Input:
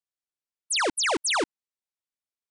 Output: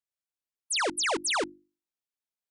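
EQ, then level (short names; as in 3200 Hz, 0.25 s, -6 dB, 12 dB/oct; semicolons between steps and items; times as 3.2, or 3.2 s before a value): notches 50/100/150/200/250/300/350 Hz; -3.0 dB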